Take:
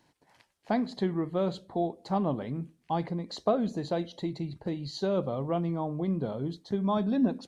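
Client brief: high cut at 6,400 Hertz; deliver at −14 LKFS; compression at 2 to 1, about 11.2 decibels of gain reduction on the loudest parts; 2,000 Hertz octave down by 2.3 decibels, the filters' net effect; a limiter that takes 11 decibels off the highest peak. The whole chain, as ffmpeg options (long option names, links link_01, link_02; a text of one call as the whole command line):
ffmpeg -i in.wav -af "lowpass=6400,equalizer=frequency=2000:width_type=o:gain=-3,acompressor=threshold=-42dB:ratio=2,volume=29dB,alimiter=limit=-4.5dB:level=0:latency=1" out.wav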